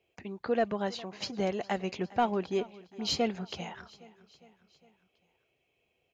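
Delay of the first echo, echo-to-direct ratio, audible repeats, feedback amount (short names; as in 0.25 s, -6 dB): 0.407 s, -19.0 dB, 3, 56%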